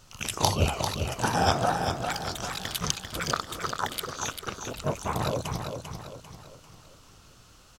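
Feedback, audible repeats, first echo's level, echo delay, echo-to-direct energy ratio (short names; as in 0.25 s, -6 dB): 43%, 4, -6.5 dB, 0.395 s, -5.5 dB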